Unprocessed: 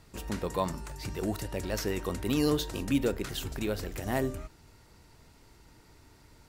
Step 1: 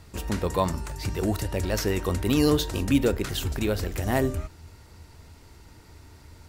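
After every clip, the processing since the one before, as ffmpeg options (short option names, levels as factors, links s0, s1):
-af "equalizer=f=80:w=3.8:g=12,volume=1.88"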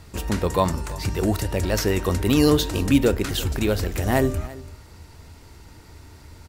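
-af "aecho=1:1:338:0.106,volume=1.58"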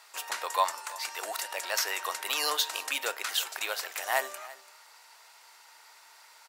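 -af "highpass=f=770:w=0.5412,highpass=f=770:w=1.3066,volume=0.891"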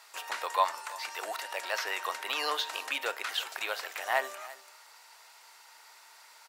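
-filter_complex "[0:a]acrossover=split=4000[s0][s1];[s1]acompressor=threshold=0.00631:ratio=4:attack=1:release=60[s2];[s0][s2]amix=inputs=2:normalize=0"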